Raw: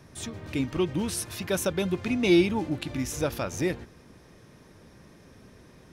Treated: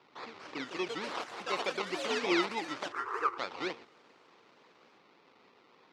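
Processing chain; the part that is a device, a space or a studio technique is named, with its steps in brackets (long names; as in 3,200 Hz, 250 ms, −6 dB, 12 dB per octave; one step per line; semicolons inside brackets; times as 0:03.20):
circuit-bent sampling toy (sample-and-hold swept by an LFO 21×, swing 60% 3.4 Hz; loudspeaker in its box 600–4,400 Hz, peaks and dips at 620 Hz −9 dB, 1,600 Hz −7 dB, 3,100 Hz −4 dB)
delay with pitch and tempo change per echo 271 ms, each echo +4 semitones, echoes 3, each echo −6 dB
0:02.92–0:03.38: drawn EQ curve 100 Hz 0 dB, 220 Hz −28 dB, 380 Hz +7 dB, 630 Hz −15 dB, 1,200 Hz +12 dB, 3,600 Hz −17 dB, 14,000 Hz +5 dB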